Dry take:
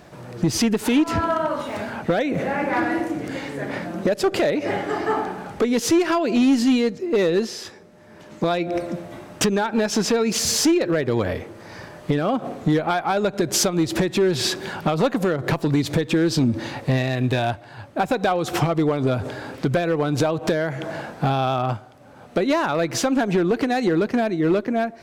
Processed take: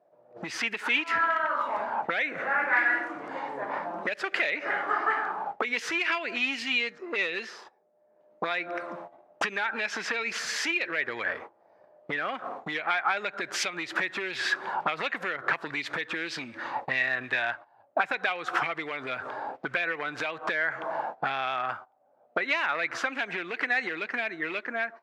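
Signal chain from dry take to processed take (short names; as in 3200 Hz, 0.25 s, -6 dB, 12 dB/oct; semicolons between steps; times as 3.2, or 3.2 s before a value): low shelf 66 Hz -9.5 dB; gate -34 dBFS, range -20 dB; auto-wah 610–2400 Hz, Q 3.7, up, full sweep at -16 dBFS; gain +8 dB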